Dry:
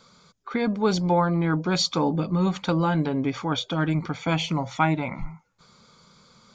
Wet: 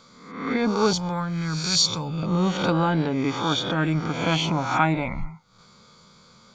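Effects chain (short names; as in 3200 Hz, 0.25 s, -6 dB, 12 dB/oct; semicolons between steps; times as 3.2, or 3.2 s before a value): spectral swells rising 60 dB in 0.76 s; 0.93–2.23 EQ curve 150 Hz 0 dB, 260 Hz -14 dB, 800 Hz -11 dB, 7800 Hz +6 dB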